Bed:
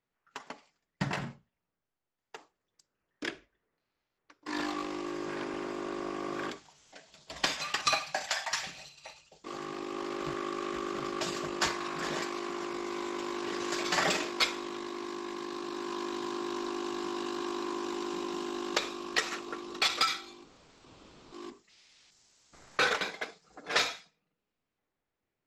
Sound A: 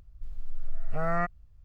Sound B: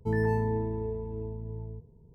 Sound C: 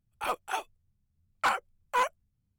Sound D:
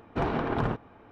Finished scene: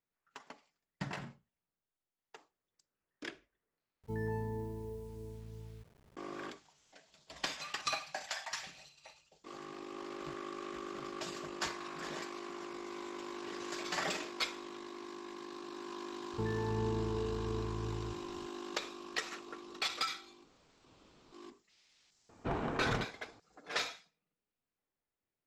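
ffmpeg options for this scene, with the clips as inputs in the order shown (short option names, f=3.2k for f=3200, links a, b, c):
-filter_complex "[2:a]asplit=2[a][b];[0:a]volume=-8dB[c];[a]acrusher=bits=8:mix=0:aa=0.000001[d];[b]alimiter=level_in=2dB:limit=-24dB:level=0:latency=1:release=71,volume=-2dB[e];[c]asplit=2[f][g];[f]atrim=end=4.034[h];[d]atrim=end=2.14,asetpts=PTS-STARTPTS,volume=-10.5dB[i];[g]atrim=start=6.166[j];[e]atrim=end=2.14,asetpts=PTS-STARTPTS,volume=-2dB,afade=t=in:d=0.004:c=hsin,afade=t=out:st=2.136:d=0.004:c=hsin,adelay=16330[k];[4:a]atrim=end=1.11,asetpts=PTS-STARTPTS,volume=-8dB,afade=t=in:d=0.004:c=hsin,afade=t=out:st=1.106:d=0.004:c=hsin,adelay=22290[l];[h][i]acrossfade=d=0.004:c1=hsin:c2=hsin[m];[m][j]acrossfade=d=0.004:c1=hsin:c2=hsin[n];[n][k][l]amix=inputs=3:normalize=0"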